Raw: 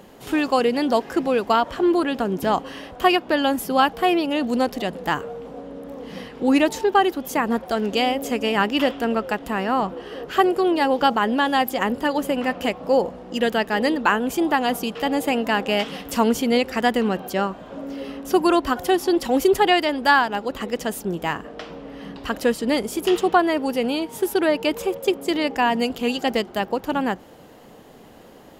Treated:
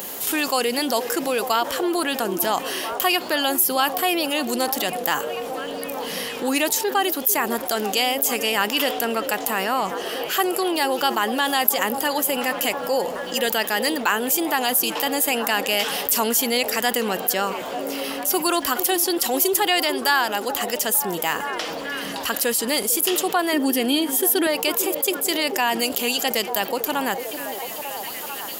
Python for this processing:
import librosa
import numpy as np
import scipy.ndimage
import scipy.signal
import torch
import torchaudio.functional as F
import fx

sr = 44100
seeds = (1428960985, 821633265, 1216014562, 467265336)

p1 = fx.riaa(x, sr, side='recording')
p2 = fx.small_body(p1, sr, hz=(280.0, 1800.0, 3200.0), ring_ms=45, db=14, at=(23.53, 24.47))
p3 = fx.high_shelf(p2, sr, hz=10000.0, db=7.5)
p4 = p3 + fx.echo_stepped(p3, sr, ms=447, hz=410.0, octaves=0.7, feedback_pct=70, wet_db=-11, dry=0)
p5 = fx.env_flatten(p4, sr, amount_pct=50)
y = p5 * 10.0 ** (-7.0 / 20.0)